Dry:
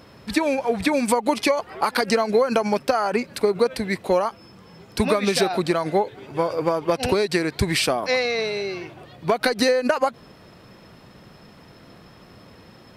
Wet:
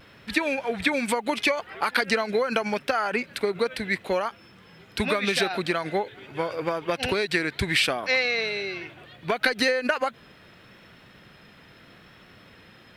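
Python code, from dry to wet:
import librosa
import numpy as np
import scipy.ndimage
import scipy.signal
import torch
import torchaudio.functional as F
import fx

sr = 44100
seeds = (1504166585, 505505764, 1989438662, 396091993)

y = fx.quant_dither(x, sr, seeds[0], bits=12, dither='triangular')
y = fx.vibrato(y, sr, rate_hz=0.76, depth_cents=26.0)
y = fx.band_shelf(y, sr, hz=2300.0, db=8.5, octaves=1.7)
y = y * librosa.db_to_amplitude(-6.0)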